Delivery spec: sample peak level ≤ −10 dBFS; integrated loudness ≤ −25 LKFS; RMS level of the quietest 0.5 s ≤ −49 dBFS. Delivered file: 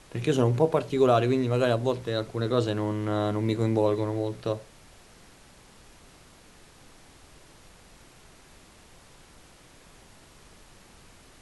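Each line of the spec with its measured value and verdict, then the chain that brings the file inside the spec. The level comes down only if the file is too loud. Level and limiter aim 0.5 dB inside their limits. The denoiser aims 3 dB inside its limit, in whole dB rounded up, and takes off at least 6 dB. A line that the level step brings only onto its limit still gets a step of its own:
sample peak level −8.0 dBFS: out of spec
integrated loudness −26.0 LKFS: in spec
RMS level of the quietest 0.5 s −53 dBFS: in spec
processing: brickwall limiter −10.5 dBFS

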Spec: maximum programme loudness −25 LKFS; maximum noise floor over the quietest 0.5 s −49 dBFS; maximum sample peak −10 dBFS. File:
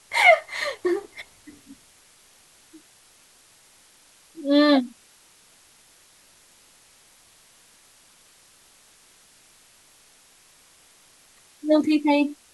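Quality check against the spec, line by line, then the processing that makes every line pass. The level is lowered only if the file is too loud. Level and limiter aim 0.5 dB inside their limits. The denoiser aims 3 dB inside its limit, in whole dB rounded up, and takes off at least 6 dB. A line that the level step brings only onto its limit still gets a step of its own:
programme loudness −21.0 LKFS: out of spec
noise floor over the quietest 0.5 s −56 dBFS: in spec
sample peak −3.5 dBFS: out of spec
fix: level −4.5 dB
brickwall limiter −10.5 dBFS

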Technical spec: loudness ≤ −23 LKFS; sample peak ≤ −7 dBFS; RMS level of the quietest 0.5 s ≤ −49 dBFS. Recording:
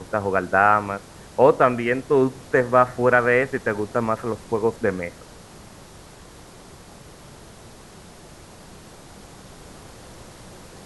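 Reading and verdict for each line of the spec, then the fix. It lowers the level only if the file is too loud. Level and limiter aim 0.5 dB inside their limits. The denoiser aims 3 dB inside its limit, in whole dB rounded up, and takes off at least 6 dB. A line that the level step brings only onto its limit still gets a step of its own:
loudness −20.5 LKFS: out of spec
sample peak −2.5 dBFS: out of spec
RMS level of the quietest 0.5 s −44 dBFS: out of spec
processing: broadband denoise 6 dB, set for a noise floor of −44 dBFS
level −3 dB
brickwall limiter −7.5 dBFS

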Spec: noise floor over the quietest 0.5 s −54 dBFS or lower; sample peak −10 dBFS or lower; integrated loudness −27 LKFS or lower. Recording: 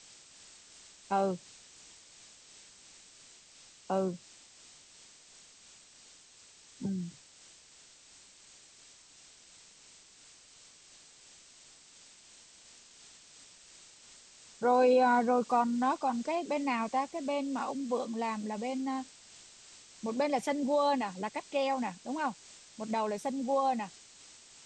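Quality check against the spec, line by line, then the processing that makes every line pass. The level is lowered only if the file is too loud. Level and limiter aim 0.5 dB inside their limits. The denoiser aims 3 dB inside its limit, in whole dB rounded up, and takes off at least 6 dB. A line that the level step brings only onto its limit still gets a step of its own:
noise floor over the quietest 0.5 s −58 dBFS: in spec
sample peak −16.0 dBFS: in spec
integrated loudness −32.0 LKFS: in spec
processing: no processing needed

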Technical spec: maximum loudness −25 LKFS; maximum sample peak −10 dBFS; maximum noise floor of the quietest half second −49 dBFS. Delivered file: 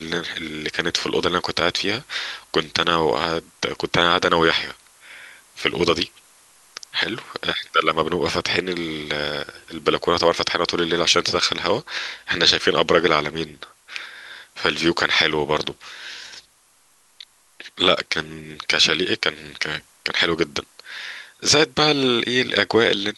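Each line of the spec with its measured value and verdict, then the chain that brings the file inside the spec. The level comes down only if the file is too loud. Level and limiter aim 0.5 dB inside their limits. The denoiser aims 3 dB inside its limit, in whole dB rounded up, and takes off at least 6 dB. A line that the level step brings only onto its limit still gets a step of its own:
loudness −20.5 LKFS: out of spec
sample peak −2.5 dBFS: out of spec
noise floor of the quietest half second −58 dBFS: in spec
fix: level −5 dB
brickwall limiter −10.5 dBFS

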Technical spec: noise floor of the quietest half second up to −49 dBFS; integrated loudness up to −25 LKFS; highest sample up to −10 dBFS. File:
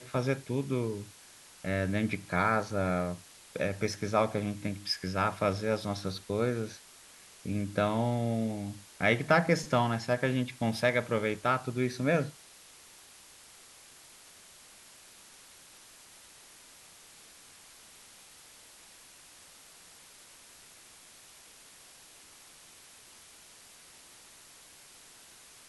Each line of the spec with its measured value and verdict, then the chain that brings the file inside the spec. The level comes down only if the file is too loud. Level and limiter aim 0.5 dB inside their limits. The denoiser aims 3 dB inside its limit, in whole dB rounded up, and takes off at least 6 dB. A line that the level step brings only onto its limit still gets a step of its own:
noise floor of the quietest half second −55 dBFS: in spec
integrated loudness −31.0 LKFS: in spec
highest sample −11.0 dBFS: in spec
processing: no processing needed

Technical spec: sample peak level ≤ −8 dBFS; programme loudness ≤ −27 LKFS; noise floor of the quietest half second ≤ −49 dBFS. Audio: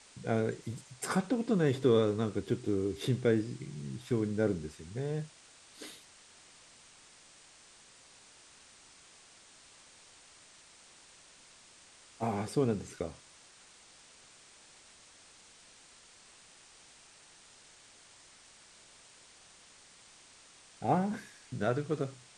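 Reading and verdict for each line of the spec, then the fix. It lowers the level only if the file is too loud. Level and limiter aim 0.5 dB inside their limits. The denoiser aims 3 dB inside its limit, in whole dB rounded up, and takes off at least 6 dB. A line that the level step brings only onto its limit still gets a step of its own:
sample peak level −14.5 dBFS: in spec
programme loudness −33.0 LKFS: in spec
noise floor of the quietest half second −58 dBFS: in spec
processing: no processing needed

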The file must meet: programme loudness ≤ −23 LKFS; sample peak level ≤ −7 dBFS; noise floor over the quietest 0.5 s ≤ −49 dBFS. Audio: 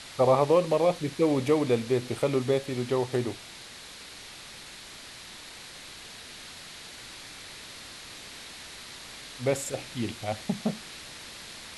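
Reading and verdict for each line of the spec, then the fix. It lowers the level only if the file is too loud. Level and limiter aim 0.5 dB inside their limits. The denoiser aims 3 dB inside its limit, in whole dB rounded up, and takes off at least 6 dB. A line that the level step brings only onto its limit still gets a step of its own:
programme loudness −27.0 LKFS: in spec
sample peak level −10.5 dBFS: in spec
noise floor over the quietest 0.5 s −45 dBFS: out of spec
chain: broadband denoise 7 dB, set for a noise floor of −45 dBFS

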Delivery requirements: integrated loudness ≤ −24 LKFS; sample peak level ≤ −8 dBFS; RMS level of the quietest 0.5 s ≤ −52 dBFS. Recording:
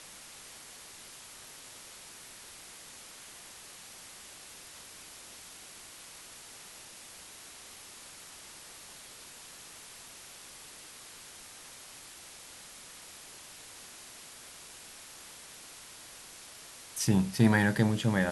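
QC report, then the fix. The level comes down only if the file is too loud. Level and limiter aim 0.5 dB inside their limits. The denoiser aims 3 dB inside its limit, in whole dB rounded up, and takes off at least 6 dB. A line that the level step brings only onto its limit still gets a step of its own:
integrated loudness −37.5 LKFS: in spec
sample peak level −10.0 dBFS: in spec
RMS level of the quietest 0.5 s −50 dBFS: out of spec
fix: broadband denoise 6 dB, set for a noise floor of −50 dBFS

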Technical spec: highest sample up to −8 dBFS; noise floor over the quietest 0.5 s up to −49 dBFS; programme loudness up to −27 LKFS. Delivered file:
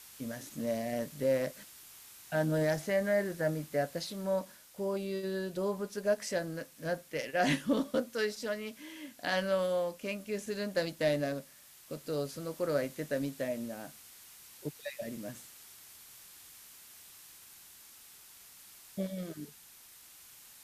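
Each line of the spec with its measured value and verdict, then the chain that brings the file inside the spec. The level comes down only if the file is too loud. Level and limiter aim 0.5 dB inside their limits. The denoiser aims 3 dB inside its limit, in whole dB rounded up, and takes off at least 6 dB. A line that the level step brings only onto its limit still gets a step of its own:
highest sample −17.0 dBFS: in spec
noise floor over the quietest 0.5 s −56 dBFS: in spec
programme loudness −34.5 LKFS: in spec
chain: no processing needed

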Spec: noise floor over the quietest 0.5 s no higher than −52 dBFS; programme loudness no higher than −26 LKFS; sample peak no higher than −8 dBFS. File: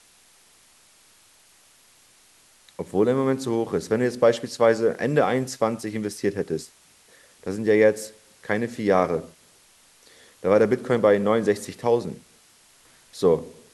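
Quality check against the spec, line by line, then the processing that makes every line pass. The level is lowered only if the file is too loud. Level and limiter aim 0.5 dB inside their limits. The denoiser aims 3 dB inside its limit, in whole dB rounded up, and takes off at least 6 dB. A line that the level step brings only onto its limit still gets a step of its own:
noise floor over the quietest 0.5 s −56 dBFS: in spec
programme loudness −23.0 LKFS: out of spec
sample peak −5.0 dBFS: out of spec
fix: level −3.5 dB

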